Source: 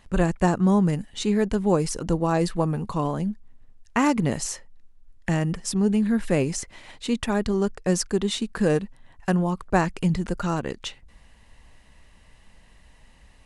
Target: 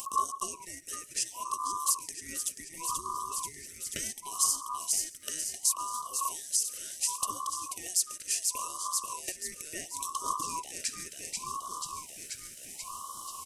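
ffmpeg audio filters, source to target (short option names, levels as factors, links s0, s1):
-filter_complex "[0:a]equalizer=f=100:t=o:w=0.67:g=-9,equalizer=f=1000:t=o:w=0.67:g=-12,equalizer=f=2500:t=o:w=0.67:g=-4,equalizer=f=6300:t=o:w=0.67:g=10,asplit=2[s0][s1];[s1]asplit=8[s2][s3][s4][s5][s6][s7][s8][s9];[s2]adelay=485,afreqshift=-54,volume=0.398[s10];[s3]adelay=970,afreqshift=-108,volume=0.243[s11];[s4]adelay=1455,afreqshift=-162,volume=0.148[s12];[s5]adelay=1940,afreqshift=-216,volume=0.0902[s13];[s6]adelay=2425,afreqshift=-270,volume=0.055[s14];[s7]adelay=2910,afreqshift=-324,volume=0.0335[s15];[s8]adelay=3395,afreqshift=-378,volume=0.0204[s16];[s9]adelay=3880,afreqshift=-432,volume=0.0124[s17];[s10][s11][s12][s13][s14][s15][s16][s17]amix=inputs=8:normalize=0[s18];[s0][s18]amix=inputs=2:normalize=0,acrossover=split=230[s19][s20];[s20]acompressor=threshold=0.0251:ratio=4[s21];[s19][s21]amix=inputs=2:normalize=0,aexciter=amount=8.2:drive=4.4:freq=7500,acompressor=mode=upward:threshold=0.0447:ratio=2.5,afftfilt=real='re*(1-between(b*sr/4096,130,670))':imag='im*(1-between(b*sr/4096,130,670))':win_size=4096:overlap=0.75,asplit=2[s22][s23];[s23]aecho=0:1:136:0.0841[s24];[s22][s24]amix=inputs=2:normalize=0,aeval=exprs='val(0)*sin(2*PI*1100*n/s)':c=same,afftfilt=real='re*(1-between(b*sr/1024,870*pow(2100/870,0.5+0.5*sin(2*PI*0.7*pts/sr))/1.41,870*pow(2100/870,0.5+0.5*sin(2*PI*0.7*pts/sr))*1.41))':imag='im*(1-between(b*sr/1024,870*pow(2100/870,0.5+0.5*sin(2*PI*0.7*pts/sr))/1.41,870*pow(2100/870,0.5+0.5*sin(2*PI*0.7*pts/sr))*1.41))':win_size=1024:overlap=0.75"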